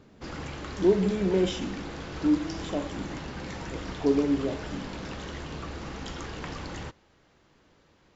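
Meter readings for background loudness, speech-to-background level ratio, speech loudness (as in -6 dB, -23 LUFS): -38.5 LUFS, 10.5 dB, -28.0 LUFS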